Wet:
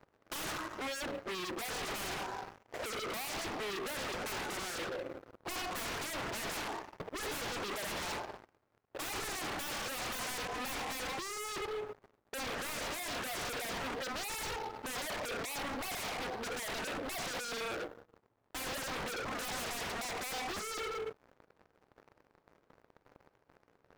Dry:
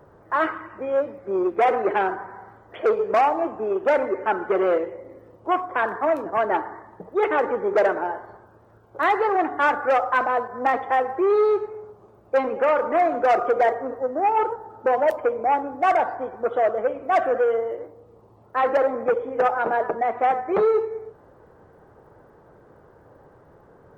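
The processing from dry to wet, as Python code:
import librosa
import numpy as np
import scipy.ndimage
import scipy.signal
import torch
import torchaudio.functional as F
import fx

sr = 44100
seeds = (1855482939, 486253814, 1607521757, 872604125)

p1 = scipy.signal.medfilt(x, 15)
p2 = fx.low_shelf(p1, sr, hz=200.0, db=-6.0)
p3 = p2 + fx.echo_single(p2, sr, ms=83, db=-23.0, dry=0)
p4 = np.sign(p3) * np.maximum(np.abs(p3) - 10.0 ** (-56.0 / 20.0), 0.0)
p5 = fx.peak_eq(p4, sr, hz=270.0, db=5.0, octaves=0.22)
p6 = fx.leveller(p5, sr, passes=3)
p7 = 10.0 ** (-25.0 / 20.0) * (np.abs((p6 / 10.0 ** (-25.0 / 20.0) + 3.0) % 4.0 - 2.0) - 1.0)
y = p7 * 10.0 ** (-8.5 / 20.0)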